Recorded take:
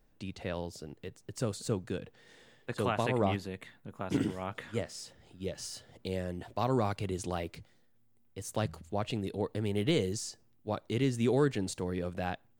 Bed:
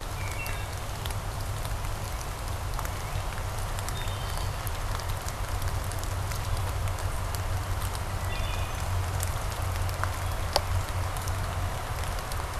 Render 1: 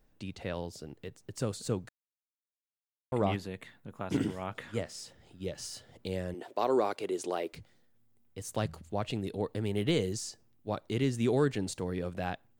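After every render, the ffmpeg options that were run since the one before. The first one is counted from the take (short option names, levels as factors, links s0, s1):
-filter_complex "[0:a]asettb=1/sr,asplit=3[s0][s1][s2];[s0]atrim=end=6.344[s3];[s1]atrim=start=6.34:end=7.53,asetpts=PTS-STARTPTS,afade=t=in:d=0.004:c=qsin,afade=t=out:st=1.186:d=0.004:c=qsin,highpass=f=380:t=q:w=1.8[s4];[s2]atrim=start=7.526[s5];[s3][s4]acrossfade=d=0.004:c1=hsin:c2=qsin[s6];[s6][s5]acrossfade=d=0.004:c1=qsin:c2=hsin,asplit=3[s7][s8][s9];[s7]atrim=end=1.89,asetpts=PTS-STARTPTS,afade=t=out:st=1.886:d=0.004:c=hsin[s10];[s8]atrim=start=1.89:end=3.12,asetpts=PTS-STARTPTS,volume=0[s11];[s9]atrim=start=3.12,asetpts=PTS-STARTPTS,afade=t=in:d=0.004:c=hsin[s12];[s10][s11][s12]concat=n=3:v=0:a=1"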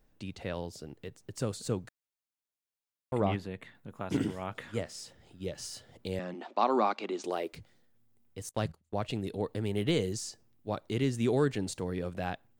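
-filter_complex "[0:a]asettb=1/sr,asplit=3[s0][s1][s2];[s0]atrim=end=3.204[s3];[s1]atrim=start=3.2:end=3.75,asetpts=PTS-STARTPTS,afade=t=in:d=0.004:c=qsin,afade=t=out:st=0.546:d=0.004:c=qsin,bass=f=250:g=1,treble=f=4000:g=-7[s4];[s2]atrim=start=3.746[s5];[s3][s4]acrossfade=d=0.004:c1=hsin:c2=qsin[s6];[s6][s5]acrossfade=d=0.004:c1=qsin:c2=hsin,asettb=1/sr,asplit=3[s7][s8][s9];[s7]atrim=end=6.194[s10];[s8]atrim=start=6.19:end=7.24,asetpts=PTS-STARTPTS,afade=t=in:d=0.004:c=qsin,afade=t=out:st=1.046:d=0.004:c=qsin,highpass=f=190:w=0.5412,highpass=f=190:w=1.3066,equalizer=f=220:t=q:w=4:g=9,equalizer=f=440:t=q:w=4:g=-7,equalizer=f=830:t=q:w=4:g=6,equalizer=f=1200:t=q:w=4:g=8,equalizer=f=2400:t=q:w=4:g=5,equalizer=f=3900:t=q:w=4:g=3,lowpass=f=6200:w=0.5412,lowpass=f=6200:w=1.3066[s11];[s9]atrim=start=7.236[s12];[s10][s11]acrossfade=d=0.004:c1=hsin:c2=qsin[s13];[s13][s12]acrossfade=d=0.004:c1=qsin:c2=hsin,asettb=1/sr,asplit=3[s14][s15][s16];[s14]atrim=end=8.494[s17];[s15]atrim=start=8.49:end=9.25,asetpts=PTS-STARTPTS,afade=t=in:d=0.004:c=qsin,afade=t=out:st=0.756:d=0.004:c=qsin,agate=range=0.0631:threshold=0.00631:ratio=16:release=100:detection=peak[s18];[s16]atrim=start=9.246[s19];[s17][s18]acrossfade=d=0.004:c1=hsin:c2=qsin[s20];[s20][s19]acrossfade=d=0.004:c1=qsin:c2=hsin"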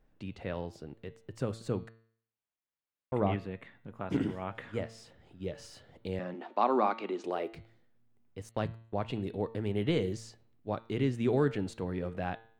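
-af "bass=f=250:g=0,treble=f=4000:g=-13,bandreject=f=113:t=h:w=4,bandreject=f=226:t=h:w=4,bandreject=f=339:t=h:w=4,bandreject=f=452:t=h:w=4,bandreject=f=565:t=h:w=4,bandreject=f=678:t=h:w=4,bandreject=f=791:t=h:w=4,bandreject=f=904:t=h:w=4,bandreject=f=1017:t=h:w=4,bandreject=f=1130:t=h:w=4,bandreject=f=1243:t=h:w=4,bandreject=f=1356:t=h:w=4,bandreject=f=1469:t=h:w=4,bandreject=f=1582:t=h:w=4,bandreject=f=1695:t=h:w=4,bandreject=f=1808:t=h:w=4,bandreject=f=1921:t=h:w=4,bandreject=f=2034:t=h:w=4,bandreject=f=2147:t=h:w=4,bandreject=f=2260:t=h:w=4,bandreject=f=2373:t=h:w=4,bandreject=f=2486:t=h:w=4,bandreject=f=2599:t=h:w=4,bandreject=f=2712:t=h:w=4,bandreject=f=2825:t=h:w=4,bandreject=f=2938:t=h:w=4,bandreject=f=3051:t=h:w=4,bandreject=f=3164:t=h:w=4,bandreject=f=3277:t=h:w=4,bandreject=f=3390:t=h:w=4,bandreject=f=3503:t=h:w=4,bandreject=f=3616:t=h:w=4,bandreject=f=3729:t=h:w=4,bandreject=f=3842:t=h:w=4,bandreject=f=3955:t=h:w=4,bandreject=f=4068:t=h:w=4,bandreject=f=4181:t=h:w=4,bandreject=f=4294:t=h:w=4,bandreject=f=4407:t=h:w=4"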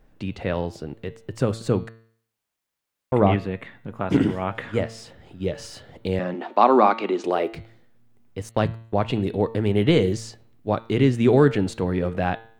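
-af "volume=3.76"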